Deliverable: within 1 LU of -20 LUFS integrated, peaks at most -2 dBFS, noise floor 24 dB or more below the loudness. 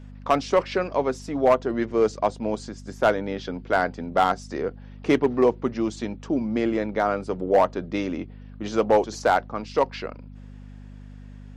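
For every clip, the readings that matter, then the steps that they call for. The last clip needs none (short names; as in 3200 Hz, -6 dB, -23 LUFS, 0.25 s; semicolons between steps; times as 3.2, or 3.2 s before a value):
clipped 0.3%; flat tops at -10.5 dBFS; hum 50 Hz; harmonics up to 250 Hz; hum level -39 dBFS; loudness -24.5 LUFS; peak -10.5 dBFS; loudness target -20.0 LUFS
-> clip repair -10.5 dBFS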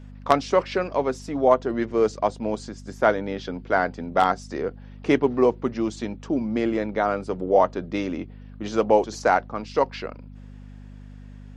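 clipped 0.0%; hum 50 Hz; harmonics up to 250 Hz; hum level -39 dBFS
-> de-hum 50 Hz, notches 5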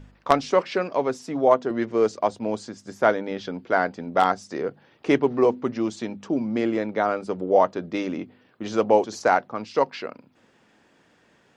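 hum none; loudness -24.0 LUFS; peak -1.5 dBFS; loudness target -20.0 LUFS
-> gain +4 dB; limiter -2 dBFS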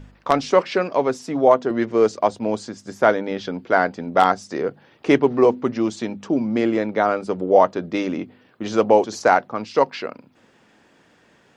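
loudness -20.5 LUFS; peak -2.0 dBFS; noise floor -57 dBFS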